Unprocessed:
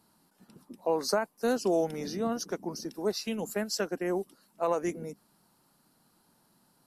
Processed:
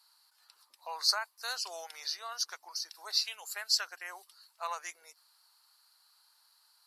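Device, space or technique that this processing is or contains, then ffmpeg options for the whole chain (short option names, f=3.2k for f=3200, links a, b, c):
headphones lying on a table: -af "highpass=f=1k:w=0.5412,highpass=f=1k:w=1.3066,equalizer=f=4.4k:t=o:w=0.42:g=12"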